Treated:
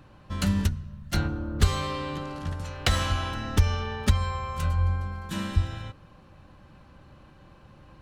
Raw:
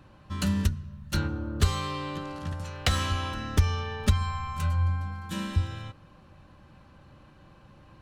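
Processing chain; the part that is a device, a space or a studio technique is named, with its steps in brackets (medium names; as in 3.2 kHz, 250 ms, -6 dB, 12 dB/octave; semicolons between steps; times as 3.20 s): 3.91–5.15 s: high-pass 43 Hz 12 dB/octave; octave pedal (harmony voices -12 st -8 dB); trim +1 dB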